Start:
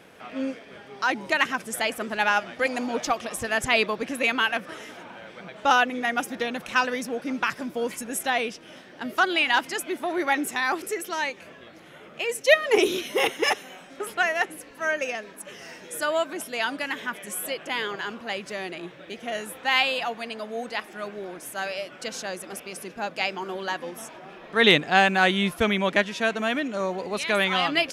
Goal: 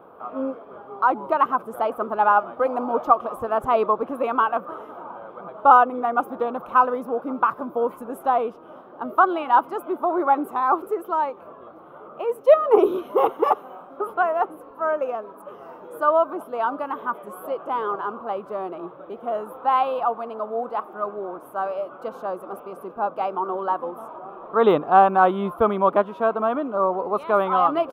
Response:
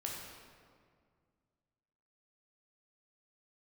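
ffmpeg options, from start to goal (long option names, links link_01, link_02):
-af "firequalizer=gain_entry='entry(170,0);entry(400,8);entry(670,9);entry(1200,15);entry(1800,-16);entry(3200,-14);entry(5400,-27);entry(8000,-24);entry(15000,1)':delay=0.05:min_phase=1,volume=-3dB"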